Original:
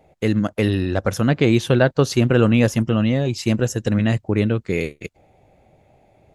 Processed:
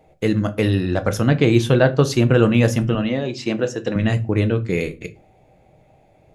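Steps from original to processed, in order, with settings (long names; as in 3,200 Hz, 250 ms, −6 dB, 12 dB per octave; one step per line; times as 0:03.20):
0:02.95–0:03.96: band-pass filter 230–4,900 Hz
convolution reverb RT60 0.35 s, pre-delay 6 ms, DRR 8.5 dB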